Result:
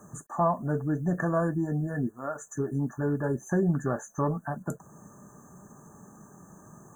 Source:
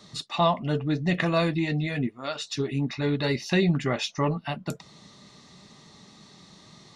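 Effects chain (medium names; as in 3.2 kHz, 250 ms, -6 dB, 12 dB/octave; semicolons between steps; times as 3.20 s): in parallel at -0.5 dB: compression 12:1, threshold -37 dBFS, peak gain reduction 19.5 dB; on the sum: word length cut 10-bit, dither none; brick-wall FIR band-stop 1.8–6 kHz; trim -3.5 dB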